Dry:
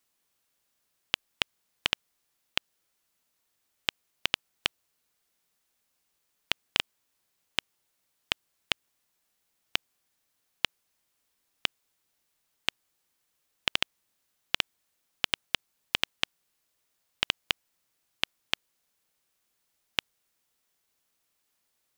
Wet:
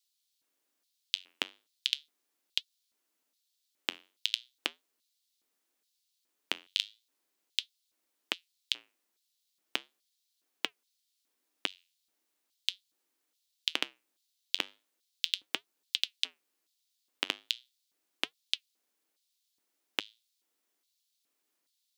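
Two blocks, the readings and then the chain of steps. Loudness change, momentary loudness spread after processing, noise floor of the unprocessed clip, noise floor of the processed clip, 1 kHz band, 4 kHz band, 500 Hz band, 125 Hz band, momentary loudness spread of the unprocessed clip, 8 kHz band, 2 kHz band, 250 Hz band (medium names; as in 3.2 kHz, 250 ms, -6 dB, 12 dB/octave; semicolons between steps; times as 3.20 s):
-3.0 dB, 5 LU, -77 dBFS, -81 dBFS, -7.0 dB, -2.5 dB, -4.5 dB, under -15 dB, 5 LU, -2.5 dB, -6.5 dB, -3.0 dB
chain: flange 0.38 Hz, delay 2.3 ms, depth 9.3 ms, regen -81%; LFO high-pass square 1.2 Hz 300–3900 Hz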